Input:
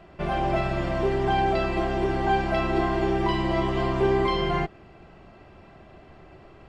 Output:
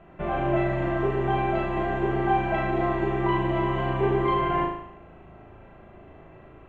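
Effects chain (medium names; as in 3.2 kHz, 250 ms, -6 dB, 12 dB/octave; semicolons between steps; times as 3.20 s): boxcar filter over 9 samples; flutter echo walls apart 6.4 m, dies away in 0.72 s; trim -1.5 dB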